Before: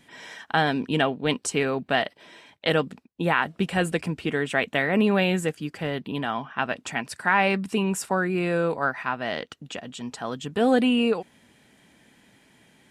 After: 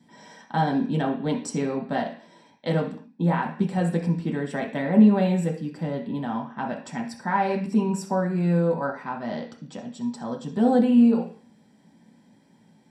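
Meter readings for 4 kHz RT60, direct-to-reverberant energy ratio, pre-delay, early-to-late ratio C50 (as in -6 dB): no reading, -1.0 dB, 3 ms, 9.0 dB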